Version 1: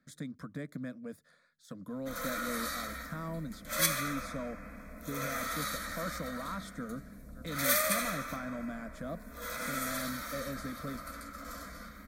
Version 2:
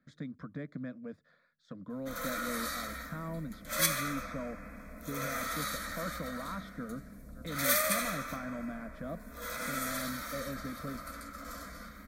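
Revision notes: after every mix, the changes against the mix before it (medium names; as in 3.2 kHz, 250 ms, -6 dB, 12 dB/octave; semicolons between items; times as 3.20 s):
speech: add distance through air 200 m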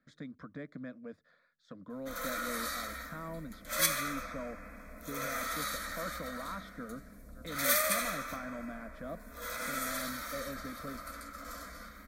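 master: add peaking EQ 140 Hz -6.5 dB 1.7 oct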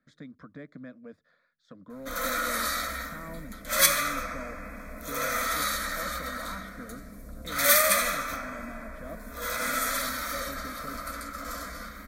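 background +8.0 dB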